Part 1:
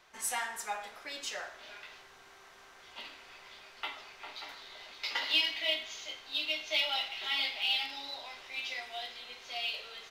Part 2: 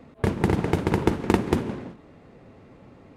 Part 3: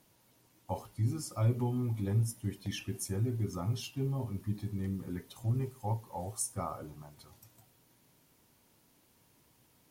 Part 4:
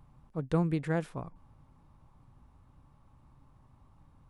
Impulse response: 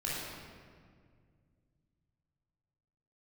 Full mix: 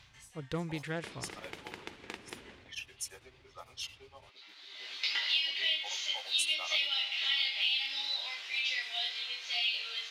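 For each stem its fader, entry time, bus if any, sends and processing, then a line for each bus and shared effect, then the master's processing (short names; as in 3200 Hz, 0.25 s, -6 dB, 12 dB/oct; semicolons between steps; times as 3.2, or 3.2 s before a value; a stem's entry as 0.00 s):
+1.0 dB, 0.00 s, no send, low shelf 450 Hz -7 dB; compressor 6:1, threshold -37 dBFS, peak gain reduction 12.5 dB; chorus 0.6 Hz, delay 19.5 ms, depth 3.4 ms; auto duck -23 dB, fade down 0.30 s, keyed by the fourth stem
-17.5 dB, 0.80 s, no send, low shelf 370 Hz -11 dB; compressor, threshold -24 dBFS, peak gain reduction 6.5 dB
-5.0 dB, 0.00 s, no send, HPF 520 Hz 24 dB/oct; low-pass opened by the level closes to 890 Hz, open at -40 dBFS; beating tremolo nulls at 8.9 Hz
-5.5 dB, 0.00 s, no send, self-modulated delay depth 0.082 ms; resonant low shelf 130 Hz +10.5 dB, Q 1.5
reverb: off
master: weighting filter D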